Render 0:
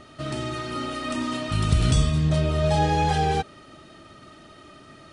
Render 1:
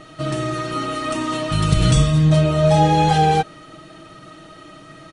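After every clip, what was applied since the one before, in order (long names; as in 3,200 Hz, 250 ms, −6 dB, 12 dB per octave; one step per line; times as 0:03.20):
notch filter 5,000 Hz, Q 21
comb filter 6.3 ms, depth 70%
level +4 dB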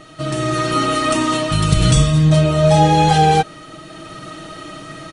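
high-shelf EQ 4,800 Hz +4.5 dB
automatic gain control gain up to 8 dB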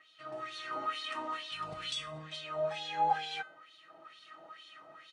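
LFO wah 2.2 Hz 730–3,800 Hz, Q 3.4
tuned comb filter 510 Hz, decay 0.47 s, mix 70%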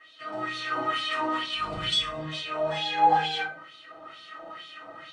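convolution reverb RT60 0.30 s, pre-delay 3 ms, DRR −8 dB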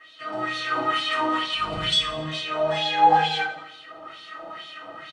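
repeating echo 83 ms, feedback 53%, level −14.5 dB
level +4 dB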